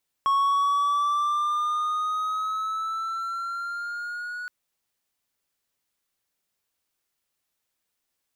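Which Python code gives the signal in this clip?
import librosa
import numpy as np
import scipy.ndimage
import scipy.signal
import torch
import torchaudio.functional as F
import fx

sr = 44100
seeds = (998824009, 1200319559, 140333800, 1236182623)

y = fx.riser_tone(sr, length_s=4.22, level_db=-16.5, wave='triangle', hz=1100.0, rise_st=5.0, swell_db=-13.0)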